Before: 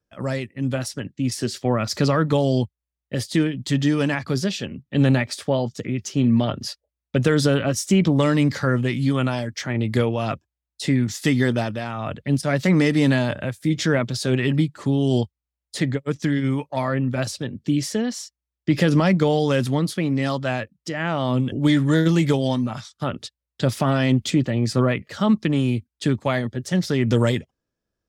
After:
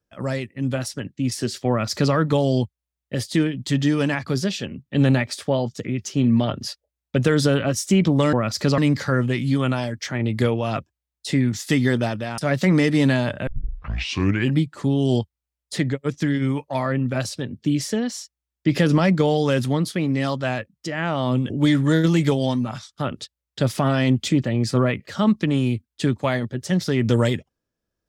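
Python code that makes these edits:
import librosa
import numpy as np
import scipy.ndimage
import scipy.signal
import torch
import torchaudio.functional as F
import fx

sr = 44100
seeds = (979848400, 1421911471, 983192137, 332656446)

y = fx.edit(x, sr, fx.duplicate(start_s=1.69, length_s=0.45, to_s=8.33),
    fx.cut(start_s=11.93, length_s=0.47),
    fx.tape_start(start_s=13.49, length_s=1.06), tone=tone)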